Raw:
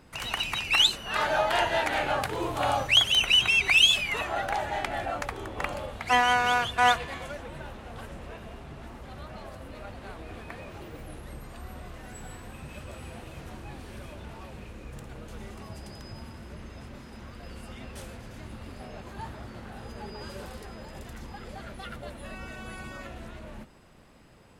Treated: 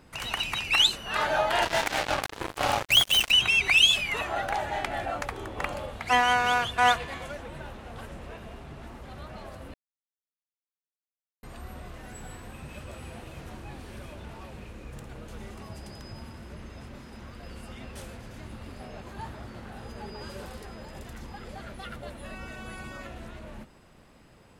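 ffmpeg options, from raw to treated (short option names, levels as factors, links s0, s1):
-filter_complex "[0:a]asplit=3[s0][s1][s2];[s0]afade=t=out:st=1.61:d=0.02[s3];[s1]acrusher=bits=3:mix=0:aa=0.5,afade=t=in:st=1.61:d=0.02,afade=t=out:st=3.3:d=0.02[s4];[s2]afade=t=in:st=3.3:d=0.02[s5];[s3][s4][s5]amix=inputs=3:normalize=0,asplit=3[s6][s7][s8];[s6]atrim=end=9.74,asetpts=PTS-STARTPTS,afade=t=out:st=9.736:d=0.004:c=hsin[s9];[s7]atrim=start=9.74:end=11.43,asetpts=PTS-STARTPTS,volume=0[s10];[s8]atrim=start=11.43,asetpts=PTS-STARTPTS,afade=t=in:d=0.004:c=hsin[s11];[s9][s10][s11]concat=n=3:v=0:a=1"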